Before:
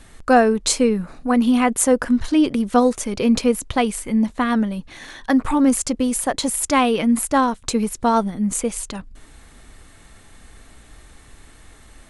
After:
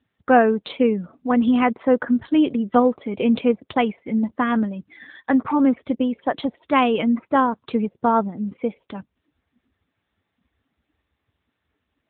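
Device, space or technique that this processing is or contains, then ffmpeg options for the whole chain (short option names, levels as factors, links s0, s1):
mobile call with aggressive noise cancelling: -af "highpass=f=140:p=1,afftdn=nr=24:nf=-37" -ar 8000 -c:a libopencore_amrnb -b:a 10200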